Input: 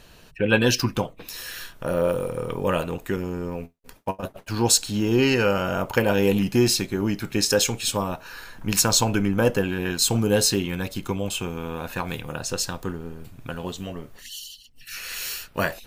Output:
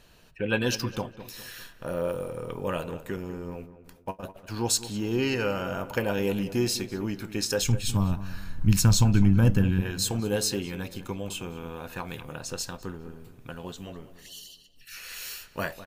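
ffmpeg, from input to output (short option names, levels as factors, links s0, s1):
-filter_complex "[0:a]asplit=3[s0][s1][s2];[s0]afade=t=out:st=7.61:d=0.02[s3];[s1]asubboost=boost=11.5:cutoff=160,afade=t=in:st=7.61:d=0.02,afade=t=out:st=9.8:d=0.02[s4];[s2]afade=t=in:st=9.8:d=0.02[s5];[s3][s4][s5]amix=inputs=3:normalize=0,asplit=2[s6][s7];[s7]adelay=204,lowpass=f=2000:p=1,volume=0.211,asplit=2[s8][s9];[s9]adelay=204,lowpass=f=2000:p=1,volume=0.45,asplit=2[s10][s11];[s11]adelay=204,lowpass=f=2000:p=1,volume=0.45,asplit=2[s12][s13];[s13]adelay=204,lowpass=f=2000:p=1,volume=0.45[s14];[s6][s8][s10][s12][s14]amix=inputs=5:normalize=0,volume=0.447"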